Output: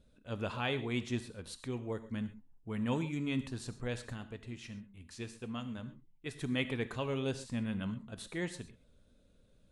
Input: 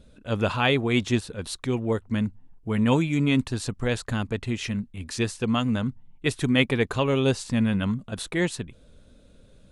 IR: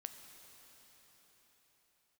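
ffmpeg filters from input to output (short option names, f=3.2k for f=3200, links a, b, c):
-filter_complex "[0:a]asplit=3[a][b][c];[a]afade=t=out:st=4.12:d=0.02[d];[b]flanger=delay=0.6:depth=5.7:regen=-81:speed=1.8:shape=sinusoidal,afade=t=in:st=4.12:d=0.02,afade=t=out:st=6.34:d=0.02[e];[c]afade=t=in:st=6.34:d=0.02[f];[d][e][f]amix=inputs=3:normalize=0[g];[1:a]atrim=start_sample=2205,atrim=end_sample=6174[h];[g][h]afir=irnorm=-1:irlink=0,volume=-8dB"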